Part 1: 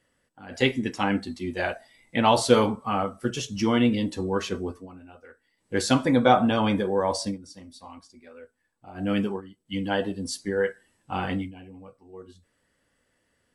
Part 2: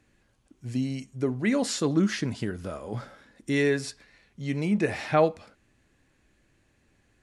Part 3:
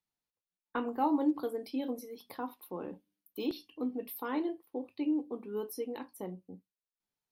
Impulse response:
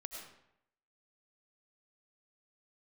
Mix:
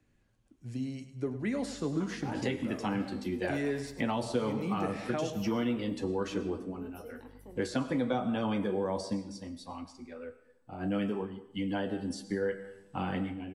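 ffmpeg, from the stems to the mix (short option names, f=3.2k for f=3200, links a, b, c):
-filter_complex "[0:a]acompressor=threshold=-37dB:ratio=1.5,highshelf=f=9.2k:g=-6.5,adelay=1850,volume=2dB,asplit=2[a][b];[b]volume=-6dB[c];[1:a]volume=-5dB,asplit=2[d][e];[e]volume=-13dB[f];[2:a]aeval=exprs='val(0)+0.00562*(sin(2*PI*50*n/s)+sin(2*PI*2*50*n/s)/2+sin(2*PI*3*50*n/s)/3+sin(2*PI*4*50*n/s)/4+sin(2*PI*5*50*n/s)/5)':c=same,adelay=1250,volume=-9.5dB,asplit=2[g][h];[h]volume=-8dB[i];[3:a]atrim=start_sample=2205[j];[c][j]afir=irnorm=-1:irlink=0[k];[f][i]amix=inputs=2:normalize=0,aecho=0:1:102|204|306|408|510|612:1|0.44|0.194|0.0852|0.0375|0.0165[l];[a][d][g][k][l]amix=inputs=5:normalize=0,lowshelf=f=440:g=6,acrossover=split=120|430|2500|5800[m][n][o][p][q];[m]acompressor=threshold=-49dB:ratio=4[r];[n]acompressor=threshold=-28dB:ratio=4[s];[o]acompressor=threshold=-30dB:ratio=4[t];[p]acompressor=threshold=-46dB:ratio=4[u];[q]acompressor=threshold=-46dB:ratio=4[v];[r][s][t][u][v]amix=inputs=5:normalize=0,flanger=delay=6.8:depth=4.1:regen=-70:speed=0.51:shape=triangular"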